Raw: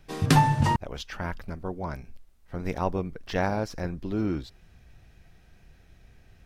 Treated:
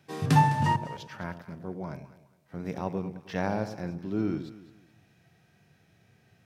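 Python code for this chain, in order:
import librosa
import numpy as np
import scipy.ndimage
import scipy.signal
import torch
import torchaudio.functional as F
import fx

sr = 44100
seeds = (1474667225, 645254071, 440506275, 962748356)

y = scipy.signal.sosfilt(scipy.signal.butter(4, 110.0, 'highpass', fs=sr, output='sos'), x)
y = fx.hpss(y, sr, part='percussive', gain_db=-9)
y = fx.echo_alternate(y, sr, ms=104, hz=800.0, feedback_pct=53, wet_db=-9.0)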